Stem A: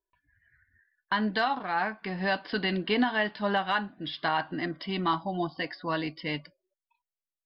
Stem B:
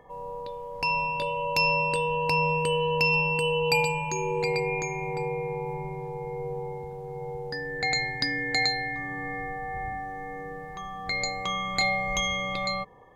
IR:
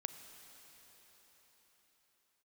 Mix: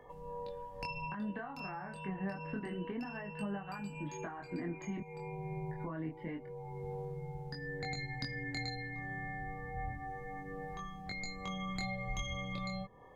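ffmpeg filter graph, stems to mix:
-filter_complex "[0:a]lowpass=frequency=1800:width=0.5412,lowpass=frequency=1800:width=1.3066,acompressor=threshold=-31dB:ratio=6,volume=1.5dB,asplit=3[link_01][link_02][link_03];[link_01]atrim=end=5,asetpts=PTS-STARTPTS,afade=type=out:start_time=4.996:duration=0.004:curve=hsin[link_04];[link_02]atrim=start=5:end=5.71,asetpts=PTS-STARTPTS,volume=0[link_05];[link_03]atrim=start=5.71,asetpts=PTS-STARTPTS,afade=type=in:duration=0.004:curve=hsin[link_06];[link_04][link_05][link_06]concat=n=3:v=0:a=1,asplit=2[link_07][link_08];[1:a]volume=0.5dB[link_09];[link_08]apad=whole_len=580024[link_10];[link_09][link_10]sidechaincompress=threshold=-48dB:ratio=8:attack=47:release=427[link_11];[link_07][link_11]amix=inputs=2:normalize=0,acrossover=split=270[link_12][link_13];[link_13]acompressor=threshold=-42dB:ratio=3[link_14];[link_12][link_14]amix=inputs=2:normalize=0,flanger=delay=20:depth=6.1:speed=0.27"

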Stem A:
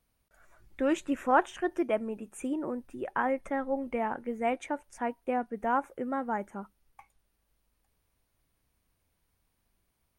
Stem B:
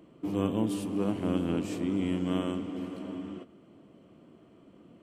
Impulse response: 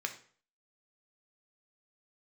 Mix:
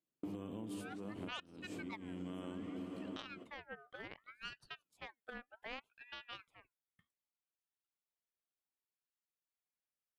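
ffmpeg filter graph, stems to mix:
-filter_complex "[0:a]highpass=320,aeval=exprs='0.316*(cos(1*acos(clip(val(0)/0.316,-1,1)))-cos(1*PI/2))+0.0355*(cos(7*acos(clip(val(0)/0.316,-1,1)))-cos(7*PI/2))':channel_layout=same,aeval=exprs='val(0)*sin(2*PI*1600*n/s+1600*0.4/0.65*sin(2*PI*0.65*n/s))':channel_layout=same,volume=-5.5dB,asplit=2[link_01][link_02];[1:a]agate=range=-42dB:threshold=-48dB:ratio=16:detection=peak,bandreject=frequency=5700:width=20,alimiter=level_in=1.5dB:limit=-24dB:level=0:latency=1:release=154,volume=-1.5dB,volume=0.5dB[link_03];[link_02]apad=whole_len=221749[link_04];[link_03][link_04]sidechaincompress=threshold=-49dB:ratio=4:attack=9.7:release=304[link_05];[link_01][link_05]amix=inputs=2:normalize=0,acompressor=threshold=-43dB:ratio=4"

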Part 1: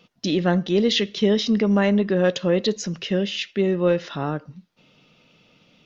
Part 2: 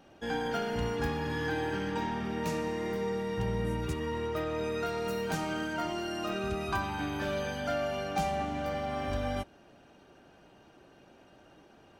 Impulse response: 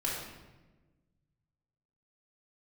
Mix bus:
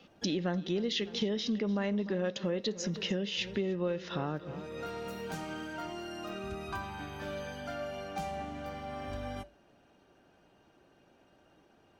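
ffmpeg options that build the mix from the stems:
-filter_complex "[0:a]volume=-3dB,asplit=3[link_01][link_02][link_03];[link_02]volume=-18.5dB[link_04];[1:a]flanger=delay=9.2:depth=2.8:regen=-83:speed=0.22:shape=sinusoidal,volume=-2dB[link_05];[link_03]apad=whole_len=529172[link_06];[link_05][link_06]sidechaincompress=threshold=-39dB:ratio=8:attack=25:release=445[link_07];[link_04]aecho=0:1:298|596|894|1192|1490|1788|2086:1|0.5|0.25|0.125|0.0625|0.0312|0.0156[link_08];[link_01][link_07][link_08]amix=inputs=3:normalize=0,acompressor=threshold=-30dB:ratio=5"

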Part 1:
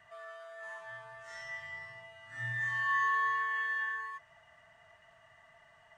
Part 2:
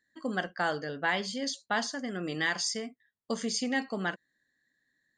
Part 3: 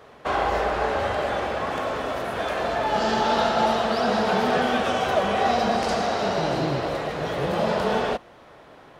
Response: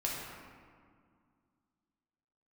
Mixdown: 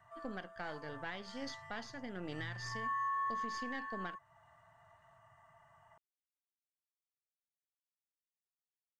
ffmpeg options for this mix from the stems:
-filter_complex "[0:a]equalizer=frequency=125:width_type=o:width=1:gain=8,equalizer=frequency=250:width_type=o:width=1:gain=-4,equalizer=frequency=500:width_type=o:width=1:gain=-6,equalizer=frequency=1000:width_type=o:width=1:gain=9,equalizer=frequency=2000:width_type=o:width=1:gain=-7,equalizer=frequency=4000:width_type=o:width=1:gain=-11,volume=-3dB[link_01];[1:a]aeval=exprs='if(lt(val(0),0),0.447*val(0),val(0))':channel_layout=same,lowpass=4800,volume=-6dB[link_02];[link_01][link_02]amix=inputs=2:normalize=0,alimiter=level_in=6.5dB:limit=-24dB:level=0:latency=1:release=384,volume=-6.5dB"

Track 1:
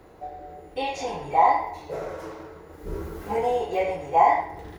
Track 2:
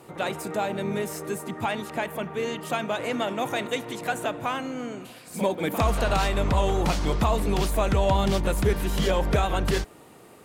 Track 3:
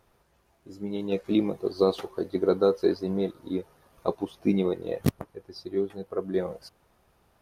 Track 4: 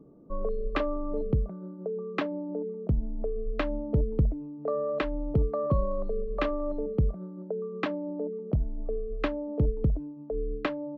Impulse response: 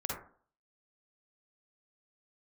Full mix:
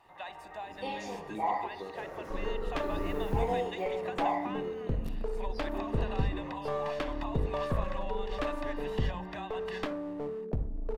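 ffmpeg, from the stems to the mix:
-filter_complex "[0:a]dynaudnorm=framelen=240:gausssize=5:maxgain=13.5dB,adelay=50,volume=-18dB[link_01];[1:a]acrossover=split=500 4200:gain=0.0891 1 0.1[link_02][link_03][link_04];[link_02][link_03][link_04]amix=inputs=3:normalize=0,aecho=1:1:1.1:0.7,acompressor=threshold=-28dB:ratio=6,volume=-10dB[link_05];[2:a]acompressor=threshold=-34dB:ratio=2.5,volume=-13dB,asplit=2[link_06][link_07];[link_07]volume=-7.5dB[link_08];[3:a]aeval=exprs='clip(val(0),-1,0.0178)':channel_layout=same,adelay=2000,volume=-4.5dB,asplit=2[link_09][link_10];[link_10]volume=-11dB[link_11];[4:a]atrim=start_sample=2205[link_12];[link_08][link_11]amix=inputs=2:normalize=0[link_13];[link_13][link_12]afir=irnorm=-1:irlink=0[link_14];[link_01][link_05][link_06][link_09][link_14]amix=inputs=5:normalize=0"

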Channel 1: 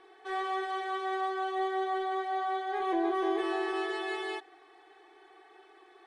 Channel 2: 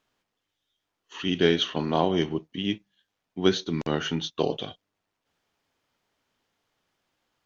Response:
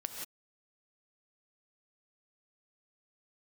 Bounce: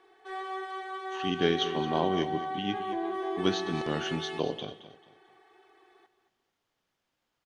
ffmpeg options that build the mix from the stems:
-filter_complex "[0:a]volume=-4dB,asplit=2[link_01][link_02];[link_02]volume=-12dB[link_03];[1:a]volume=-6.5dB,asplit=3[link_04][link_05][link_06];[link_05]volume=-13dB[link_07];[link_06]volume=-12.5dB[link_08];[2:a]atrim=start_sample=2205[link_09];[link_07][link_09]afir=irnorm=-1:irlink=0[link_10];[link_03][link_08]amix=inputs=2:normalize=0,aecho=0:1:221|442|663|884:1|0.31|0.0961|0.0298[link_11];[link_01][link_04][link_10][link_11]amix=inputs=4:normalize=0"

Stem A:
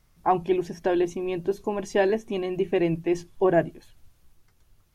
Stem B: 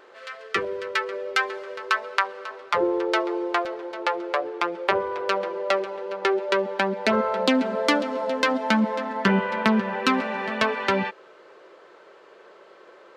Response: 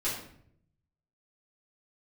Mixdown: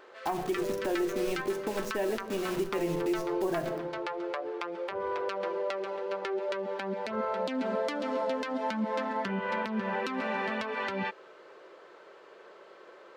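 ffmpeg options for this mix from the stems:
-filter_complex "[0:a]acrusher=bits=5:mix=0:aa=0.000001,volume=-4.5dB,asplit=2[link_01][link_02];[link_02]volume=-12dB[link_03];[1:a]acompressor=threshold=-22dB:ratio=6,volume=-2.5dB[link_04];[2:a]atrim=start_sample=2205[link_05];[link_03][link_05]afir=irnorm=-1:irlink=0[link_06];[link_01][link_04][link_06]amix=inputs=3:normalize=0,alimiter=limit=-21.5dB:level=0:latency=1:release=165"

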